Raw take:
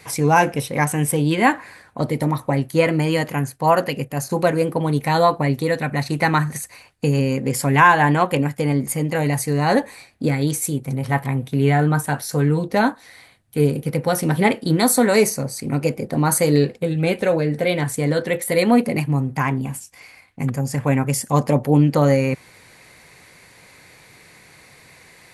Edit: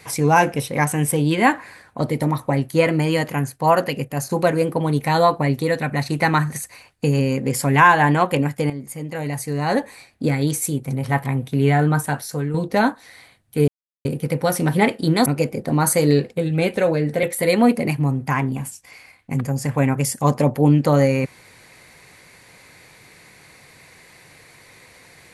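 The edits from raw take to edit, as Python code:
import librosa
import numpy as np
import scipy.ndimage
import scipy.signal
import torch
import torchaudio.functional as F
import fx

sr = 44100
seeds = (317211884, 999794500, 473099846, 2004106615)

y = fx.edit(x, sr, fx.fade_in_from(start_s=8.7, length_s=1.62, floor_db=-12.5),
    fx.fade_out_to(start_s=12.05, length_s=0.49, floor_db=-9.0),
    fx.insert_silence(at_s=13.68, length_s=0.37),
    fx.cut(start_s=14.89, length_s=0.82),
    fx.cut(start_s=17.68, length_s=0.64), tone=tone)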